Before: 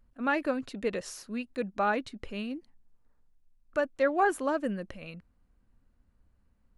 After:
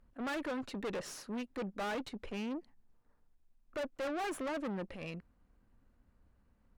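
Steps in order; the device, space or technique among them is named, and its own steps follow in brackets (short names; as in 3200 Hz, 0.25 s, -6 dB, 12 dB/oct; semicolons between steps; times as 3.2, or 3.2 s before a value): tube preamp driven hard (tube stage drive 40 dB, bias 0.55; low shelf 190 Hz -5 dB; high shelf 3200 Hz -8 dB); gain +6 dB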